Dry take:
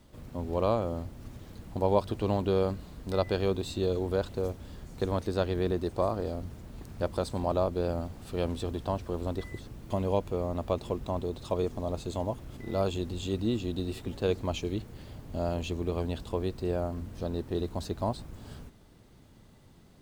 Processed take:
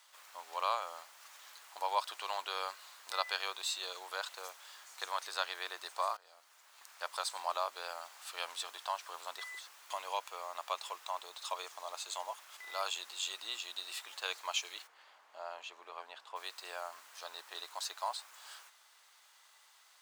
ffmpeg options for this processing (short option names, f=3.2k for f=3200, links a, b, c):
-filter_complex "[0:a]asplit=3[a][b][c];[a]afade=t=out:st=14.86:d=0.02[d];[b]lowpass=f=1k:p=1,afade=t=in:st=14.86:d=0.02,afade=t=out:st=16.35:d=0.02[e];[c]afade=t=in:st=16.35:d=0.02[f];[d][e][f]amix=inputs=3:normalize=0,asplit=2[g][h];[g]atrim=end=6.17,asetpts=PTS-STARTPTS,afade=t=out:st=6.166:d=0.004:c=hsin:silence=0.0891251[i];[h]atrim=start=6.17,asetpts=PTS-STARTPTS,afade=t=in:d=1.03:silence=0.0891251[j];[i][j]concat=n=2:v=0:a=1,highpass=f=990:w=0.5412,highpass=f=990:w=1.3066,equalizer=f=6.7k:w=1.5:g=3,volume=4dB"